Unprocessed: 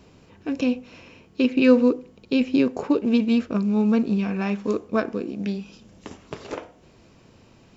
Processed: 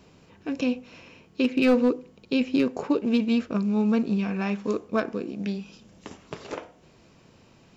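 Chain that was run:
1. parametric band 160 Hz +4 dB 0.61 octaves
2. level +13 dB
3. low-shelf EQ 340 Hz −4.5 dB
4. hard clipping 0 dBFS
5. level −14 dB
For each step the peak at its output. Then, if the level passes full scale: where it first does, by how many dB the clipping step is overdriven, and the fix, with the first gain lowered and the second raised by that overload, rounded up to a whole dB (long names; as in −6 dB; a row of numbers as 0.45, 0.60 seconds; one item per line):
−4.0, +9.0, +7.0, 0.0, −14.0 dBFS
step 2, 7.0 dB
step 2 +6 dB, step 5 −7 dB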